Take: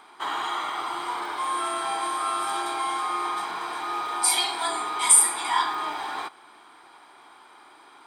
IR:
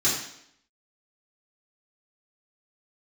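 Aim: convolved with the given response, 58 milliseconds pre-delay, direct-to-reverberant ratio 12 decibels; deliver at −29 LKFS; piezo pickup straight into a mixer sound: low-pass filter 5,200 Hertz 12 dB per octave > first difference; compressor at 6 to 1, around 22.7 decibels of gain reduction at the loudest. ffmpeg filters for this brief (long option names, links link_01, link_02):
-filter_complex "[0:a]acompressor=threshold=-37dB:ratio=6,asplit=2[link_01][link_02];[1:a]atrim=start_sample=2205,adelay=58[link_03];[link_02][link_03]afir=irnorm=-1:irlink=0,volume=-24.5dB[link_04];[link_01][link_04]amix=inputs=2:normalize=0,lowpass=5200,aderivative,volume=21.5dB"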